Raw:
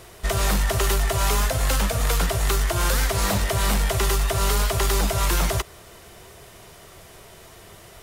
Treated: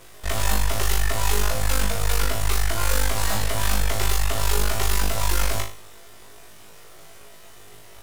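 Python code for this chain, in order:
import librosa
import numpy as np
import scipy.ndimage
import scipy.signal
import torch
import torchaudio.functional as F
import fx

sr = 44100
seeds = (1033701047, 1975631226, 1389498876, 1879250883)

p1 = fx.low_shelf(x, sr, hz=290.0, db=-5.0)
p2 = np.maximum(p1, 0.0)
y = p2 + fx.room_flutter(p2, sr, wall_m=3.3, rt60_s=0.39, dry=0)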